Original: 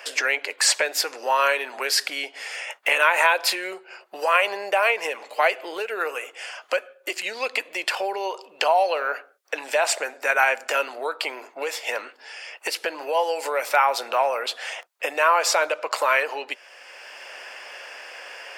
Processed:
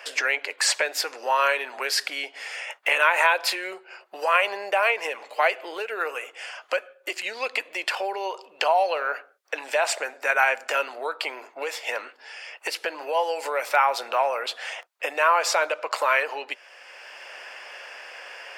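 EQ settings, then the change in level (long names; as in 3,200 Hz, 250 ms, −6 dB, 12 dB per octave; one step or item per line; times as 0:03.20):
low-shelf EQ 410 Hz −5.5 dB
high-shelf EQ 4,600 Hz −5.5 dB
0.0 dB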